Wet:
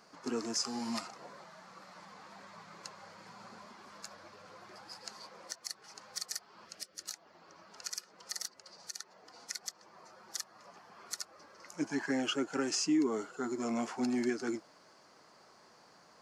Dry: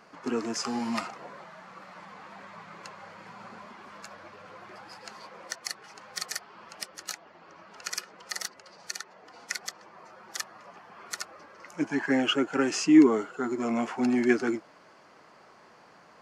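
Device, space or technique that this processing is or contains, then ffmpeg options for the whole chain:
over-bright horn tweeter: -filter_complex "[0:a]asettb=1/sr,asplit=3[link_01][link_02][link_03];[link_01]atrim=end=6.664[link_04];[link_02]atrim=start=6.66:end=7.06,asetpts=PTS-STARTPTS,afade=type=in:duration=0.004:curve=qsin,afade=type=out:start_time=0.396:duration=0.004:curve=qsin,equalizer=frequency=940:width=2.5:gain=-13.5[link_05];[link_03]atrim=start=7.056[link_06];[link_04][link_05]acrossfade=duration=0.004:curve1=hsin:curve2=qsin[link_07];[link_07][link_06]acrossfade=duration=0.004:curve1=qsin:curve2=hsin,highshelf=frequency=3600:width_type=q:width=1.5:gain=6.5,alimiter=limit=-16.5dB:level=0:latency=1:release=251,volume=-6dB"

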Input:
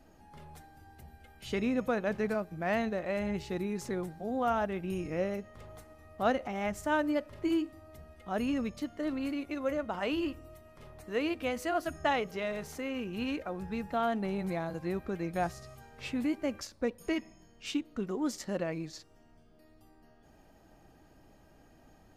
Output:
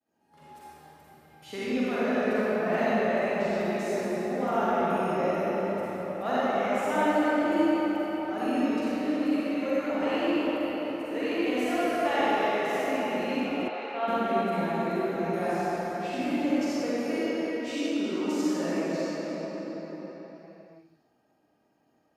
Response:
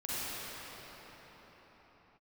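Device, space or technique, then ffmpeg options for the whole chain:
cathedral: -filter_complex "[0:a]highpass=200,agate=range=-33dB:threshold=-52dB:ratio=3:detection=peak[link_01];[1:a]atrim=start_sample=2205[link_02];[link_01][link_02]afir=irnorm=-1:irlink=0,asettb=1/sr,asplit=3[link_03][link_04][link_05];[link_03]atrim=end=13.684[link_06];[link_04]atrim=start=13.68:end=14.08,asetpts=PTS-STARTPTS,afade=type=in:duration=0.004:curve=qsin,afade=type=out:start_time=0.396:duration=0.004:curve=qsin,acrossover=split=410 5000:gain=0.0794 1 0.112[link_07][link_08][link_09];[link_07][link_08][link_09]amix=inputs=3:normalize=0[link_10];[link_05]atrim=start=14.076[link_11];[link_06][link_10]acrossfade=duration=0.004:curve1=hsin:curve2=qsin[link_12];[link_12][link_11]acrossfade=duration=0.004:curve1=qsin:curve2=hsin"

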